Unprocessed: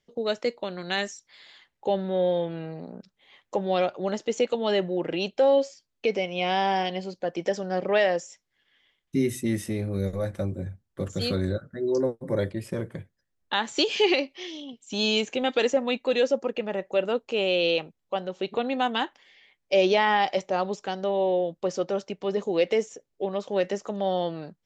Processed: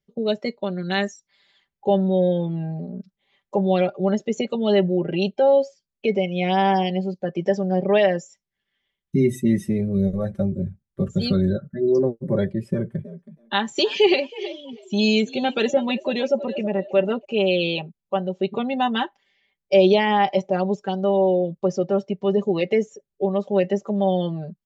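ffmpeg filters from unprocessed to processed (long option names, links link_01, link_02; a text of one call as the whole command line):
ffmpeg -i in.wav -filter_complex "[0:a]asettb=1/sr,asplit=3[link_01][link_02][link_03];[link_01]atrim=end=12.724[link_04];[link_02]atrim=start=12.72:end=17.25,asetpts=PTS-STARTPTS,afade=type=in:duration=0.004:curve=qsin,afade=type=out:start_time=4.526:duration=0.004:curve=qsin,asplit=4[link_05][link_06][link_07][link_08];[link_06]adelay=322,afreqshift=57,volume=-14dB[link_09];[link_07]adelay=644,afreqshift=114,volume=-24.5dB[link_10];[link_08]adelay=966,afreqshift=171,volume=-34.9dB[link_11];[link_05][link_09][link_10][link_11]amix=inputs=4:normalize=0,atrim=end_sample=199773[link_12];[link_03]atrim=start=17.246[link_13];[link_04][link_12]acrossfade=duration=0.004:curve1=hsin:curve2=qsin[link_14];[link_14][link_13]acrossfade=duration=0.004:curve1=qsin:curve2=hsin,aecho=1:1:5.1:0.69,afftdn=noise_reduction=12:noise_floor=-36,equalizer=frequency=85:width_type=o:width=2.6:gain=12" out.wav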